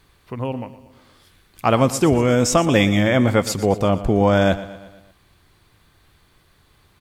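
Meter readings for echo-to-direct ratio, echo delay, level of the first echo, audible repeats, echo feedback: −14.0 dB, 118 ms, −15.5 dB, 4, 54%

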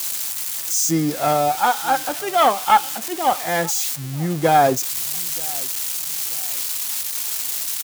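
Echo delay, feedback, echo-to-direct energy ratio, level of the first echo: 933 ms, 34%, −22.5 dB, −23.0 dB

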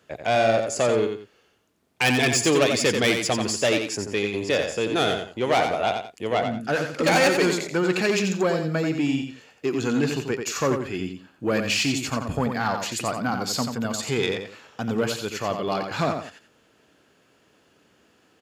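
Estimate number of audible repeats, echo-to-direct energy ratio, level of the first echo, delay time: 2, −5.5 dB, −6.0 dB, 88 ms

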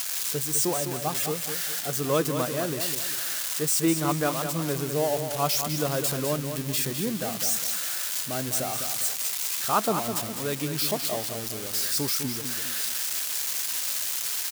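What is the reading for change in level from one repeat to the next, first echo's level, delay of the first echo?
−8.5 dB, −8.0 dB, 204 ms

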